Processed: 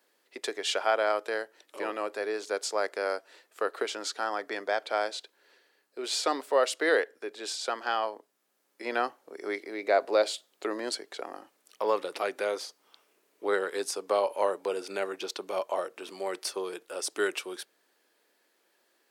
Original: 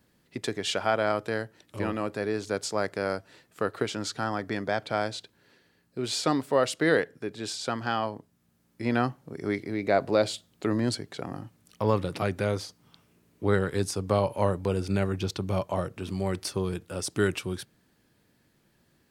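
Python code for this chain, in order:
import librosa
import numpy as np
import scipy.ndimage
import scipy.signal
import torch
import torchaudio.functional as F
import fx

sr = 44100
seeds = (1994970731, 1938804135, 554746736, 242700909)

y = scipy.signal.sosfilt(scipy.signal.butter(4, 390.0, 'highpass', fs=sr, output='sos'), x)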